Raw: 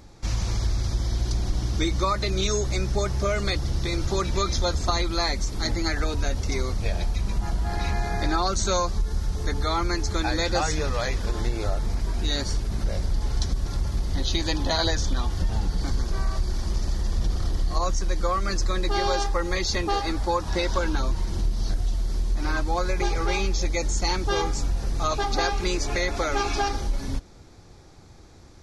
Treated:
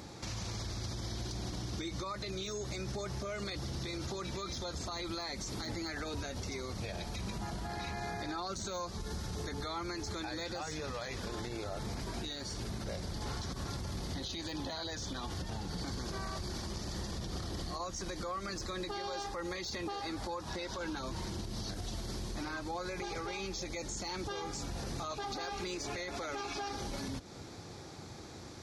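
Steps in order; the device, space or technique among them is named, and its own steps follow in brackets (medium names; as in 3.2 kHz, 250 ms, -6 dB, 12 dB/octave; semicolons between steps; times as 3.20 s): broadcast voice chain (high-pass 110 Hz 12 dB/octave; de-esser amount 65%; compression 4:1, threshold -39 dBFS, peak gain reduction 16 dB; peaking EQ 4 kHz +2 dB; peak limiter -34.5 dBFS, peak gain reduction 9.5 dB); 13.25–13.70 s: peaking EQ 1.2 kHz +5 dB 1.1 oct; trim +4 dB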